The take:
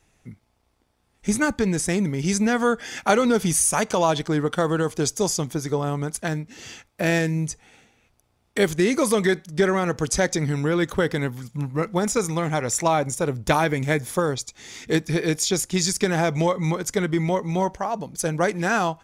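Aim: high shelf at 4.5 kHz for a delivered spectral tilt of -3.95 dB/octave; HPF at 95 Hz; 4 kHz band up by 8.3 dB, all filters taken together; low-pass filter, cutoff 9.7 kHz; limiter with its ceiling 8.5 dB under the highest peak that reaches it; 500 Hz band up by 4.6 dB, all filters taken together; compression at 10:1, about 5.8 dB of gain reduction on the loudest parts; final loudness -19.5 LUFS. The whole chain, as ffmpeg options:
-af "highpass=95,lowpass=9700,equalizer=f=500:t=o:g=5.5,equalizer=f=4000:t=o:g=8,highshelf=f=4500:g=4.5,acompressor=threshold=0.141:ratio=10,volume=1.88,alimiter=limit=0.376:level=0:latency=1"

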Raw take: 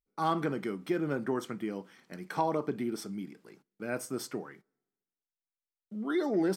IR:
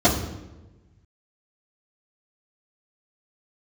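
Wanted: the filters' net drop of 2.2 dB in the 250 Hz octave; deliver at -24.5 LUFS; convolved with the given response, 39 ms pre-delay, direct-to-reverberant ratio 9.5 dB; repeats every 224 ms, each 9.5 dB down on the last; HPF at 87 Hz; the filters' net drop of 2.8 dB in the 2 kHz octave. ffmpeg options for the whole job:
-filter_complex "[0:a]highpass=87,equalizer=f=250:t=o:g=-3,equalizer=f=2000:t=o:g=-4,aecho=1:1:224|448|672|896:0.335|0.111|0.0365|0.012,asplit=2[s0][s1];[1:a]atrim=start_sample=2205,adelay=39[s2];[s1][s2]afir=irnorm=-1:irlink=0,volume=0.0316[s3];[s0][s3]amix=inputs=2:normalize=0,volume=2.99"

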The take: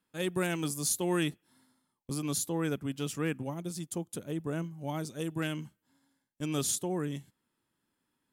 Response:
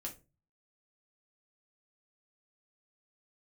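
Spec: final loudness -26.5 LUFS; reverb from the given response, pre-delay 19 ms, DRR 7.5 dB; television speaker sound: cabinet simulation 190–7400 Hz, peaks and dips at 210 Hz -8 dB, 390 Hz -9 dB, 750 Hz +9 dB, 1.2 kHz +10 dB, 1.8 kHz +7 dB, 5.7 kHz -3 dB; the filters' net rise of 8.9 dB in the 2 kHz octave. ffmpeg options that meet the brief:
-filter_complex "[0:a]equalizer=f=2000:t=o:g=5,asplit=2[s0][s1];[1:a]atrim=start_sample=2205,adelay=19[s2];[s1][s2]afir=irnorm=-1:irlink=0,volume=0.531[s3];[s0][s3]amix=inputs=2:normalize=0,highpass=f=190:w=0.5412,highpass=f=190:w=1.3066,equalizer=f=210:t=q:w=4:g=-8,equalizer=f=390:t=q:w=4:g=-9,equalizer=f=750:t=q:w=4:g=9,equalizer=f=1200:t=q:w=4:g=10,equalizer=f=1800:t=q:w=4:g=7,equalizer=f=5700:t=q:w=4:g=-3,lowpass=f=7400:w=0.5412,lowpass=f=7400:w=1.3066,volume=2"

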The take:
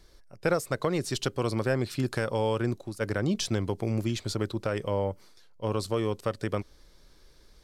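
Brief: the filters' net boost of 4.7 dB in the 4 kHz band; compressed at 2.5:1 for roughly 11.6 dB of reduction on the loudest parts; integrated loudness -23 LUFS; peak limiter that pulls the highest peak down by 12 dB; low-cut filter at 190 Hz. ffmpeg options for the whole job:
-af "highpass=190,equalizer=f=4000:t=o:g=6,acompressor=threshold=0.01:ratio=2.5,volume=10,alimiter=limit=0.282:level=0:latency=1"

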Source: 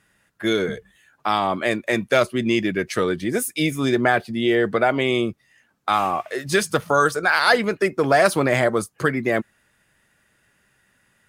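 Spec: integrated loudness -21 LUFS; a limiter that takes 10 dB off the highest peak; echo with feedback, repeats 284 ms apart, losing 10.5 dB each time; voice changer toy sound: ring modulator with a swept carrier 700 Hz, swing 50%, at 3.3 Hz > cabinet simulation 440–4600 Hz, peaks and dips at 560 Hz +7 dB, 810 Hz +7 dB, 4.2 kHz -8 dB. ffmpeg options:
-af "alimiter=limit=0.282:level=0:latency=1,aecho=1:1:284|568|852:0.299|0.0896|0.0269,aeval=exprs='val(0)*sin(2*PI*700*n/s+700*0.5/3.3*sin(2*PI*3.3*n/s))':c=same,highpass=440,equalizer=f=560:t=q:w=4:g=7,equalizer=f=810:t=q:w=4:g=7,equalizer=f=4200:t=q:w=4:g=-8,lowpass=f=4600:w=0.5412,lowpass=f=4600:w=1.3066,volume=1.5"

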